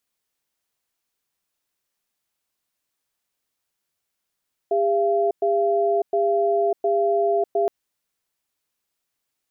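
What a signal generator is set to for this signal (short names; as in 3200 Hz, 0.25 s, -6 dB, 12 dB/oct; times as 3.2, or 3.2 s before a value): cadence 403 Hz, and 682 Hz, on 0.60 s, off 0.11 s, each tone -20 dBFS 2.97 s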